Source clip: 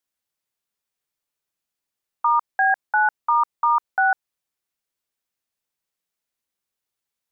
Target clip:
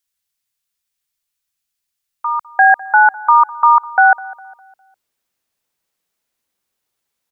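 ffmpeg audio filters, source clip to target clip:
-filter_complex "[0:a]asetnsamples=n=441:p=0,asendcmd='2.45 equalizer g 2',equalizer=f=430:w=0.36:g=-14,asplit=2[a][b];[b]adelay=203,lowpass=f=1.6k:p=1,volume=-19dB,asplit=2[c][d];[d]adelay=203,lowpass=f=1.6k:p=1,volume=0.47,asplit=2[e][f];[f]adelay=203,lowpass=f=1.6k:p=1,volume=0.47,asplit=2[g][h];[h]adelay=203,lowpass=f=1.6k:p=1,volume=0.47[i];[a][c][e][g][i]amix=inputs=5:normalize=0,volume=8dB"

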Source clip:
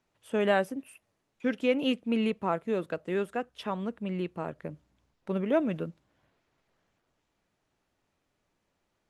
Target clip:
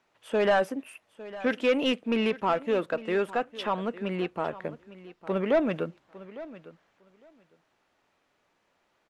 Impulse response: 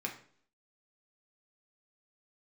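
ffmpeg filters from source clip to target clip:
-filter_complex "[0:a]asplit=2[a][b];[b]highpass=f=720:p=1,volume=17dB,asoftclip=type=tanh:threshold=-12.5dB[c];[a][c]amix=inputs=2:normalize=0,lowpass=f=2.7k:p=1,volume=-6dB,aecho=1:1:855|1710:0.141|0.0212,volume=-1dB"

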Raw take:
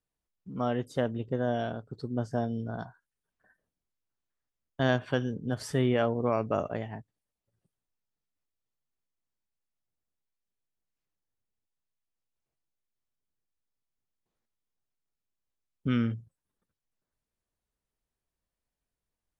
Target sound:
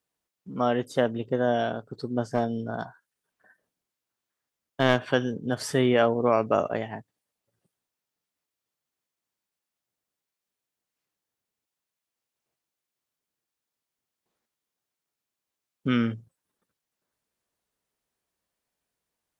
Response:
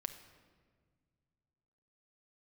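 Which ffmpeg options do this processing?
-filter_complex "[0:a]highpass=f=270:p=1,asettb=1/sr,asplit=3[a][b][c];[a]atrim=end=2.344[d];[b]atrim=start=2.34:end=5.11,asetpts=PTS-STARTPTS,afade=t=in:d=0.004:c=qsin,afade=t=out:st=2.766:d=0.004:c=qsin,aeval=exprs='clip(val(0),-1,0.0282)':c=same[e];[c]atrim=start=5.106[f];[d][e]acrossfade=d=0.004:c1=hsin:c2=qsin[g];[g][f]acrossfade=d=0.004:c1=qsin:c2=hsin,volume=7dB"

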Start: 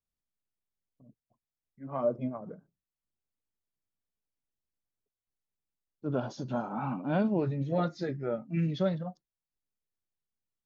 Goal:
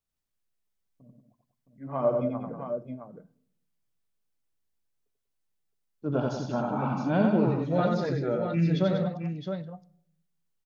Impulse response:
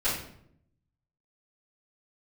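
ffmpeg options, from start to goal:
-filter_complex "[0:a]aecho=1:1:89|191|666:0.668|0.355|0.447,asplit=2[a][b];[1:a]atrim=start_sample=2205[c];[b][c]afir=irnorm=-1:irlink=0,volume=-28.5dB[d];[a][d]amix=inputs=2:normalize=0,volume=2.5dB"

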